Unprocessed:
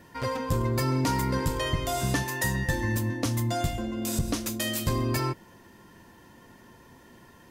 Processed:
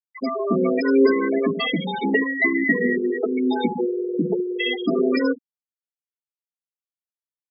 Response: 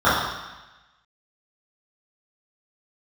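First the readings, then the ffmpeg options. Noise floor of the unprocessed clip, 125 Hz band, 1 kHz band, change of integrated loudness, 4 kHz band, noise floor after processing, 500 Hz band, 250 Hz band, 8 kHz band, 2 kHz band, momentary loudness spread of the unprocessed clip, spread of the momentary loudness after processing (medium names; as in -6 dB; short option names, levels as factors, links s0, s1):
-54 dBFS, -8.5 dB, +1.0 dB, +7.0 dB, +3.5 dB, under -85 dBFS, +12.0 dB, +9.5 dB, under -40 dB, +9.5 dB, 4 LU, 7 LU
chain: -filter_complex "[0:a]equalizer=f=250:t=o:w=1:g=5,equalizer=f=1000:t=o:w=1:g=-3,equalizer=f=2000:t=o:w=1:g=6,equalizer=f=4000:t=o:w=1:g=6,equalizer=f=8000:t=o:w=1:g=-8,afreqshift=140,flanger=delay=2.7:depth=5.8:regen=45:speed=0.4:shape=triangular,highpass=120,asplit=2[s0][s1];[s1]aecho=0:1:70:0.237[s2];[s0][s2]amix=inputs=2:normalize=0,afftfilt=real='re*gte(hypot(re,im),0.0891)':imag='im*gte(hypot(re,im),0.0891)':win_size=1024:overlap=0.75,volume=2.66"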